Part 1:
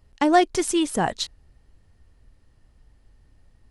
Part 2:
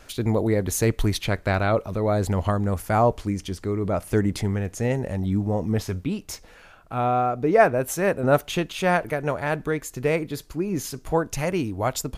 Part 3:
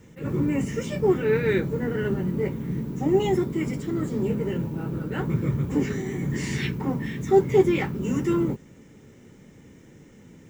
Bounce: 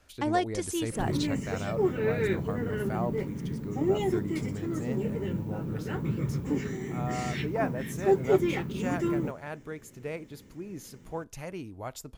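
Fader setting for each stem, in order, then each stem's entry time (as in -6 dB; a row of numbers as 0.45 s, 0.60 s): -10.0 dB, -14.0 dB, -5.5 dB; 0.00 s, 0.00 s, 0.75 s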